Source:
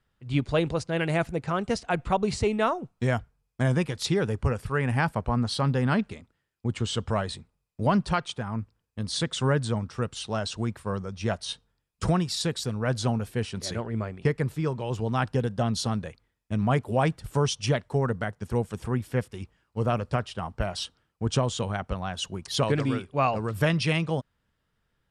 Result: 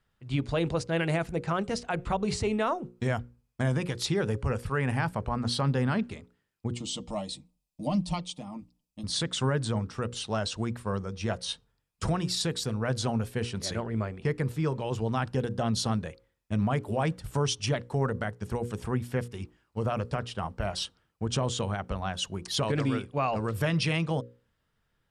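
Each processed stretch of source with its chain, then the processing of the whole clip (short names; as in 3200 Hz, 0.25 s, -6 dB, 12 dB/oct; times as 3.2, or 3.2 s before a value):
6.74–9.04 bell 1000 Hz -7.5 dB 1.7 oct + fixed phaser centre 420 Hz, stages 6 + comb 6.6 ms, depth 54%
whole clip: limiter -18.5 dBFS; notches 60/120/180/240/300/360/420/480/540 Hz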